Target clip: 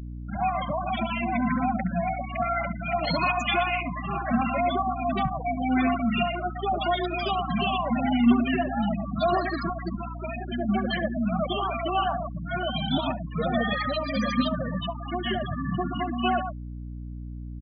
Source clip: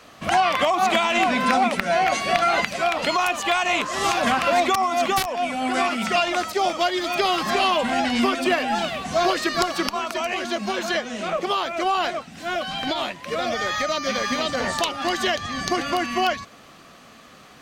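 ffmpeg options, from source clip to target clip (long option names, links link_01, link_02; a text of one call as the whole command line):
ffmpeg -i in.wav -filter_complex "[0:a]acrossover=split=110[link_01][link_02];[link_02]dynaudnorm=framelen=240:gausssize=3:maxgain=12dB[link_03];[link_01][link_03]amix=inputs=2:normalize=0,lowshelf=frequency=250:width_type=q:width=1.5:gain=9.5,asettb=1/sr,asplit=3[link_04][link_05][link_06];[link_04]atrim=end=2.854[link_07];[link_05]atrim=start=2.85:end=3.57,asetpts=PTS-STARTPTS,afade=type=in:duration=0.004:curve=qsin,afade=type=out:start_time=0.716:duration=0.004:curve=qsin,acontrast=40[link_08];[link_06]atrim=start=3.566[link_09];[link_07][link_08]acrossfade=duration=0.004:curve1=hsin:curve2=qsin[link_10];[link_10][link_09]acrossfade=duration=0.004:curve1=qsin:curve2=hsin,flanger=delay=2.8:depth=5.6:regen=-39:speed=0.43:shape=sinusoidal,asplit=2[link_11][link_12];[link_12]aecho=0:1:121:0.398[link_13];[link_11][link_13]amix=inputs=2:normalize=0,adynamicequalizer=threshold=0.0316:dfrequency=430:dqfactor=1.5:tfrequency=430:tqfactor=1.5:attack=5:release=100:ratio=0.375:range=2:mode=cutabove:tftype=bell,afftfilt=real='re*gte(hypot(re,im),0.251)':imag='im*gte(hypot(re,im),0.251)':win_size=1024:overlap=0.75,acrossover=split=1400[link_14][link_15];[link_14]adelay=70[link_16];[link_16][link_15]amix=inputs=2:normalize=0,aeval=exprs='val(0)+0.0355*(sin(2*PI*60*n/s)+sin(2*PI*2*60*n/s)/2+sin(2*PI*3*60*n/s)/3+sin(2*PI*4*60*n/s)/4+sin(2*PI*5*60*n/s)/5)':channel_layout=same,volume=-6dB" out.wav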